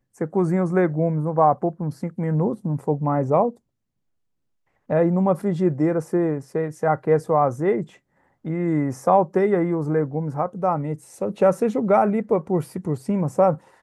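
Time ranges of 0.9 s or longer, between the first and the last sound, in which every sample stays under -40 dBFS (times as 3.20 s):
3.53–4.90 s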